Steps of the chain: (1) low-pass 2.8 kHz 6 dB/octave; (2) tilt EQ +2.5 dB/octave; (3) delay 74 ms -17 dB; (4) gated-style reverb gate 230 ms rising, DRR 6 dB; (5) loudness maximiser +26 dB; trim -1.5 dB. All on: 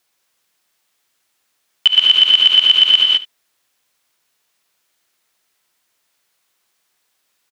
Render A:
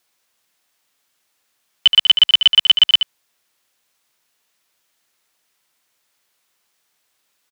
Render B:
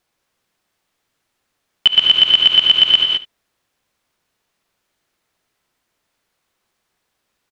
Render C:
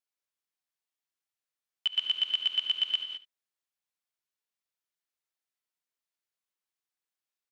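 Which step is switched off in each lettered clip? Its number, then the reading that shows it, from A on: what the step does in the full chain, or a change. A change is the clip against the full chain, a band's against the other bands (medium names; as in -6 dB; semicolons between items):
4, crest factor change +2.5 dB; 2, loudness change -1.0 LU; 5, crest factor change +3.0 dB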